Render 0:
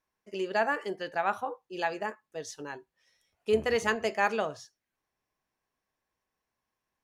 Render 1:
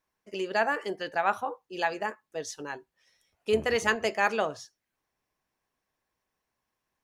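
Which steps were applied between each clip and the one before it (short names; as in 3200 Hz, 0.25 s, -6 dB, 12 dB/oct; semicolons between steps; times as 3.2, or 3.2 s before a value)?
harmonic-percussive split percussive +4 dB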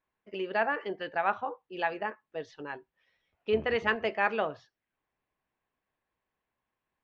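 LPF 3400 Hz 24 dB/oct; gain -2 dB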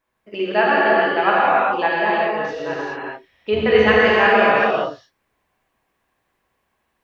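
non-linear reverb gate 0.45 s flat, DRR -7 dB; gain +7.5 dB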